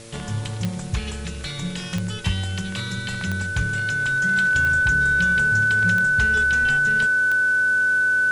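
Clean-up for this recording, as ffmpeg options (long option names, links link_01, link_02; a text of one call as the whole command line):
ffmpeg -i in.wav -af "adeclick=threshold=4,bandreject=frequency=113.9:width_type=h:width=4,bandreject=frequency=227.8:width_type=h:width=4,bandreject=frequency=341.7:width_type=h:width=4,bandreject=frequency=455.6:width_type=h:width=4,bandreject=frequency=569.5:width_type=h:width=4,bandreject=frequency=1500:width=30,afwtdn=0.0071" out.wav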